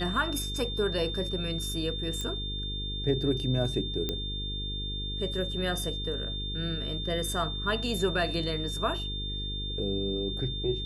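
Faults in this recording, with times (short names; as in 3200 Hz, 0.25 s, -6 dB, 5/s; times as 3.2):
buzz 50 Hz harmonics 9 -36 dBFS
tone 3600 Hz -35 dBFS
2.21 pop -20 dBFS
4.09 pop -16 dBFS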